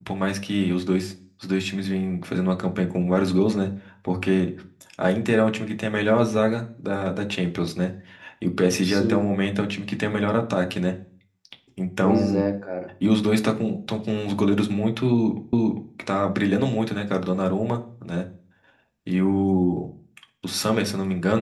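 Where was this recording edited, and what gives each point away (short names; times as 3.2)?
15.53 repeat of the last 0.4 s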